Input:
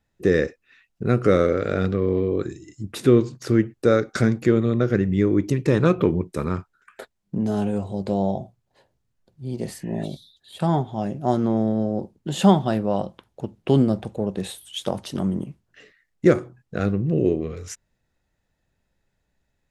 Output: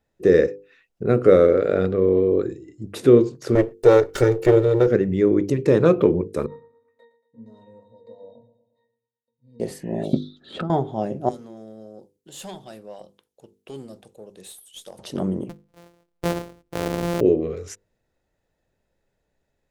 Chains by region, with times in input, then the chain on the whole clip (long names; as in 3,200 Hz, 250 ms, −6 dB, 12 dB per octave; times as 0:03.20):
0:01.03–0:02.82: parametric band 5,900 Hz −8 dB 0.37 octaves + one half of a high-frequency compander decoder only
0:03.55–0:04.88: lower of the sound and its delayed copy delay 2.2 ms + high-shelf EQ 8,300 Hz +6.5 dB
0:06.46–0:09.60: RIAA equalisation recording + resonances in every octave A#, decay 0.31 s + repeating echo 116 ms, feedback 52%, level −14 dB
0:10.13–0:10.70: hollow resonant body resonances 240/1,300 Hz, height 18 dB, ringing for 25 ms + compressor whose output falls as the input rises −18 dBFS, ratio −0.5 + high-frequency loss of the air 140 metres
0:11.29–0:14.99: first-order pre-emphasis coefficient 0.9 + tube saturation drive 29 dB, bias 0.25
0:15.49–0:17.21: samples sorted by size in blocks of 256 samples + downward compressor 4 to 1, threshold −21 dBFS
whole clip: parametric band 470 Hz +9 dB 1.3 octaves; mains-hum notches 50/100/150/200/250/300/350/400/450/500 Hz; level −2.5 dB